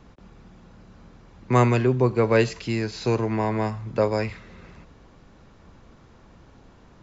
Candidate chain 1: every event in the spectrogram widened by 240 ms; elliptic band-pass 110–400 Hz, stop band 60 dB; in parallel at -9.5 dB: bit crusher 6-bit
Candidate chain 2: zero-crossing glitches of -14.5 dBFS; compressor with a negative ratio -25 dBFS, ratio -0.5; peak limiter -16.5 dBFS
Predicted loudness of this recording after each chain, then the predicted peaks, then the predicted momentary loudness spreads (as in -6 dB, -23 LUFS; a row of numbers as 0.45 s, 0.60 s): -19.0 LUFS, -29.0 LUFS; -6.5 dBFS, -16.5 dBFS; 10 LU, 4 LU